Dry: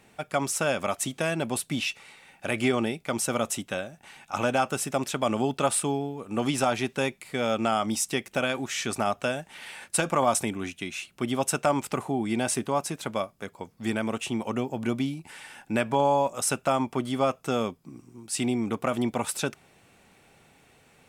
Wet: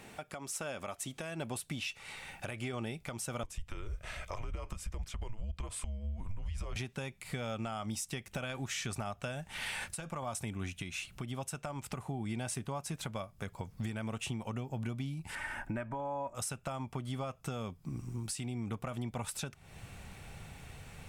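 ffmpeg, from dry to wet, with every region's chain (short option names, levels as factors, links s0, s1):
-filter_complex "[0:a]asettb=1/sr,asplit=3[s0][s1][s2];[s0]atrim=end=3.434[s3];[s1]atrim=start=3.43:end=6.76,asetpts=PTS-STARTPTS,afade=t=in:d=0.004:c=qsin,afade=t=out:st=3.326:d=0.004:c=qsin,highshelf=f=7600:g=-7,acompressor=threshold=0.00794:ratio=2.5:attack=3.2:release=140:knee=1:detection=peak,afreqshift=-210[s4];[s2]atrim=start=6.756[s5];[s3][s4]acrossfade=d=0.004:c1=hsin:c2=qsin[s6];[s6][s5]acrossfade=d=0.004:c1=qsin:c2=hsin,asettb=1/sr,asplit=3[s7][s8][s9];[s7]atrim=end=15.354[s10];[s8]atrim=start=15.35:end=16.35,asetpts=PTS-STARTPTS,afade=t=in:d=0.004:c=qsin,afade=t=out:st=0.996:d=0.004:c=qsin,highshelf=f=2500:t=q:w=1.5:g=-10.5,aecho=1:1:3.2:0.55,atrim=end_sample=44100[s11];[s9]atrim=start=16.346[s12];[s10][s11]acrossfade=d=0.004:c1=hsin:c2=qsin[s13];[s13][s12]acrossfade=d=0.004:c1=qsin:c2=hsin,asubboost=boost=7:cutoff=110,acompressor=threshold=0.01:ratio=10,alimiter=level_in=2.82:limit=0.0631:level=0:latency=1:release=237,volume=0.355,volume=1.88"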